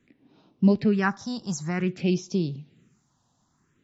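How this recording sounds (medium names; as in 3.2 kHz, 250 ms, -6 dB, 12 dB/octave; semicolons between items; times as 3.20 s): phasing stages 4, 0.53 Hz, lowest notch 370–1700 Hz; MP3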